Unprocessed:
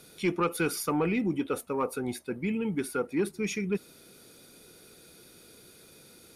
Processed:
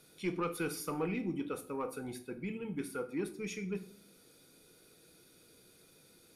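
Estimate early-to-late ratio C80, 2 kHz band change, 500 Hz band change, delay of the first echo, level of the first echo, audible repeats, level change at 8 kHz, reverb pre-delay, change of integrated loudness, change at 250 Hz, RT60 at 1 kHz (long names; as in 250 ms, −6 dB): 18.0 dB, −8.5 dB, −8.0 dB, no echo audible, no echo audible, no echo audible, −8.5 dB, 4 ms, −8.0 dB, −8.0 dB, 0.45 s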